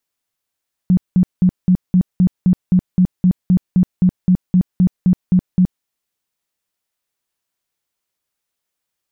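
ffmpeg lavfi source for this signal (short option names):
-f lavfi -i "aevalsrc='0.398*sin(2*PI*182*mod(t,0.26))*lt(mod(t,0.26),13/182)':d=4.94:s=44100"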